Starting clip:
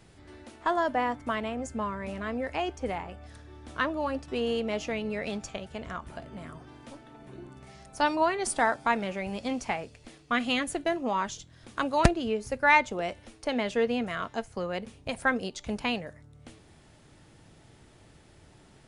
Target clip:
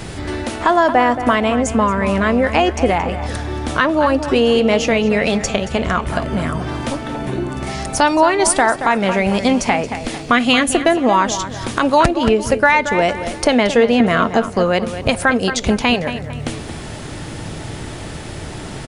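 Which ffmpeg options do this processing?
ffmpeg -i in.wav -filter_complex "[0:a]asettb=1/sr,asplit=3[link_01][link_02][link_03];[link_01]atrim=end=14.004[link_04];[link_02]atrim=start=14:end=14.51,asetpts=PTS-STARTPTS,afade=type=in:duration=0.004:curve=qsin,afade=type=out:start_time=0.506:duration=0.004:curve=qsin,equalizer=frequency=310:width=0.38:gain=7.5[link_05];[link_03]atrim=start=14.506[link_06];[link_04][link_05]acrossfade=duration=0.004:curve1=hsin:curve2=qsin[link_07];[link_07][link_06]acrossfade=duration=0.004:curve1=qsin:curve2=hsin,acompressor=threshold=-47dB:ratio=2,asplit=2[link_08][link_09];[link_09]adelay=226,lowpass=frequency=3700:poles=1,volume=-11dB,asplit=2[link_10][link_11];[link_11]adelay=226,lowpass=frequency=3700:poles=1,volume=0.4,asplit=2[link_12][link_13];[link_13]adelay=226,lowpass=frequency=3700:poles=1,volume=0.4,asplit=2[link_14][link_15];[link_15]adelay=226,lowpass=frequency=3700:poles=1,volume=0.4[link_16];[link_08][link_10][link_12][link_14][link_16]amix=inputs=5:normalize=0,alimiter=level_in=27.5dB:limit=-1dB:release=50:level=0:latency=1,volume=-1dB" out.wav

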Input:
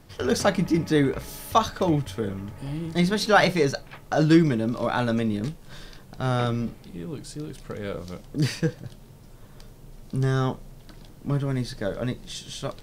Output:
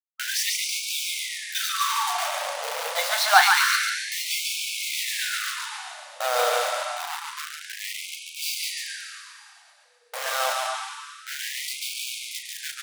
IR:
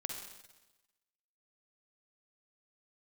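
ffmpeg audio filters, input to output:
-filter_complex "[0:a]agate=range=-33dB:threshold=-34dB:ratio=3:detection=peak,acrusher=bits=4:mix=0:aa=0.000001,asplit=2[link_01][link_02];[link_02]adelay=37,volume=-9.5dB[link_03];[link_01][link_03]amix=inputs=2:normalize=0,asplit=2[link_04][link_05];[1:a]atrim=start_sample=2205,asetrate=22491,aresample=44100,adelay=142[link_06];[link_05][link_06]afir=irnorm=-1:irlink=0,volume=-4dB[link_07];[link_04][link_07]amix=inputs=2:normalize=0,afftfilt=real='re*gte(b*sr/1024,460*pow(2200/460,0.5+0.5*sin(2*PI*0.27*pts/sr)))':imag='im*gte(b*sr/1024,460*pow(2200/460,0.5+0.5*sin(2*PI*0.27*pts/sr)))':win_size=1024:overlap=0.75,volume=3dB"

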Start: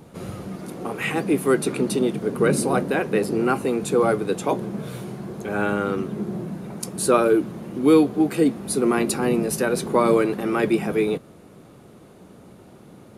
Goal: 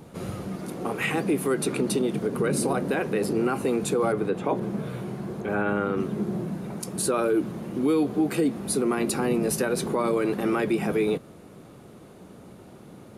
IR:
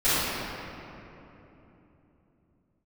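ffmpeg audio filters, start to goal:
-filter_complex "[0:a]asettb=1/sr,asplit=3[link_01][link_02][link_03];[link_01]atrim=end=4.124[link_04];[link_02]atrim=start=4.12:end=6,asetpts=PTS-STARTPTS,afade=type=in:duration=0.004:curve=qsin,afade=type=out:start_time=1.876:duration=0.004:curve=qsin,acrossover=split=2900[link_05][link_06];[link_06]acompressor=threshold=-55dB:ratio=4:attack=1:release=60[link_07];[link_05][link_07]amix=inputs=2:normalize=0[link_08];[link_03]atrim=start=5.996[link_09];[link_04][link_08]acrossfade=duration=0.004:curve1=hsin:curve2=qsin[link_10];[link_10][link_09]acrossfade=duration=0.004:curve1=qsin:curve2=hsin,alimiter=limit=-15.5dB:level=0:latency=1:release=76"

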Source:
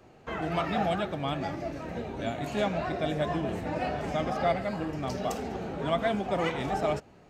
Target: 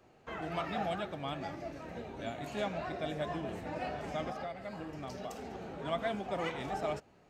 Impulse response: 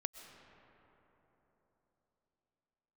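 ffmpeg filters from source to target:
-filter_complex "[0:a]lowshelf=frequency=380:gain=-3.5,asettb=1/sr,asplit=3[link_01][link_02][link_03];[link_01]atrim=end=4.304[link_04];[link_02]atrim=start=4.3:end=5.85,asetpts=PTS-STARTPTS,afade=type=in:duration=0.004:curve=qsin,afade=type=out:start_time=1.546:duration=0.004:curve=qsin,acompressor=threshold=-32dB:ratio=6[link_05];[link_03]atrim=start=5.846[link_06];[link_04][link_05]acrossfade=duration=0.004:curve1=hsin:curve2=qsin[link_07];[link_07][link_06]acrossfade=duration=0.004:curve1=qsin:curve2=hsin,volume=-6dB"

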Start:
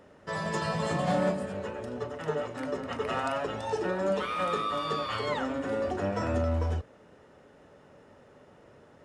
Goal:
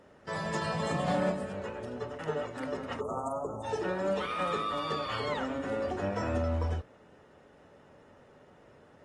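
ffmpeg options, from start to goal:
ffmpeg -i in.wav -filter_complex "[0:a]asplit=3[link_01][link_02][link_03];[link_01]afade=type=out:start_time=2.99:duration=0.02[link_04];[link_02]asuperstop=centerf=2900:order=20:qfactor=0.57,afade=type=in:start_time=2.99:duration=0.02,afade=type=out:start_time=3.63:duration=0.02[link_05];[link_03]afade=type=in:start_time=3.63:duration=0.02[link_06];[link_04][link_05][link_06]amix=inputs=3:normalize=0,volume=-2.5dB" -ar 48000 -c:a aac -b:a 32k out.aac

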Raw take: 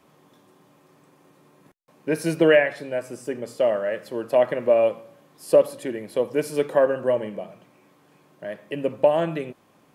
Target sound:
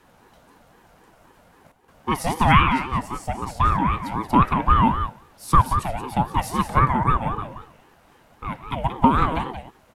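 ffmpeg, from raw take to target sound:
ffmpeg -i in.wav -filter_complex "[0:a]aecho=1:1:179:0.376,acrossover=split=490|3000[link_01][link_02][link_03];[link_01]acompressor=threshold=-25dB:ratio=6[link_04];[link_04][link_02][link_03]amix=inputs=3:normalize=0,aeval=exprs='val(0)*sin(2*PI*490*n/s+490*0.35/3.8*sin(2*PI*3.8*n/s))':channel_layout=same,volume=5.5dB" out.wav

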